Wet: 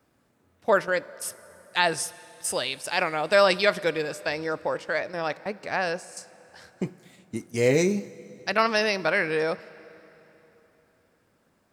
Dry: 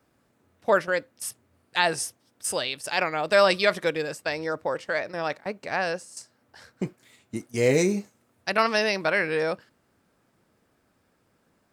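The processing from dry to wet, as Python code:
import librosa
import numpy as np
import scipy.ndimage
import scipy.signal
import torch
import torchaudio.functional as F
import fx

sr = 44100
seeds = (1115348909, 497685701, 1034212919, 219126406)

y = fx.peak_eq(x, sr, hz=9600.0, db=-6.0, octaves=0.53, at=(7.69, 8.76))
y = fx.rev_plate(y, sr, seeds[0], rt60_s=3.7, hf_ratio=0.8, predelay_ms=0, drr_db=18.5)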